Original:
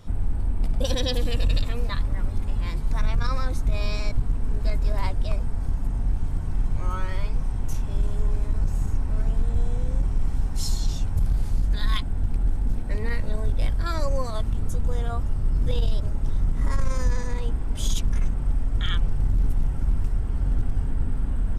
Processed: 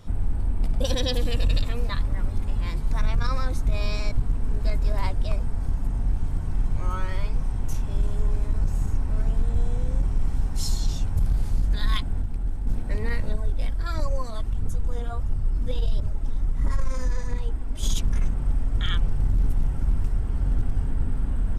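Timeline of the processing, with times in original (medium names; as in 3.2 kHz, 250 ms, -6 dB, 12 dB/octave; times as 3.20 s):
12.22–12.67 s: gain -4.5 dB
13.33–17.83 s: flange 1.5 Hz, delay 0 ms, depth 4.5 ms, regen +41%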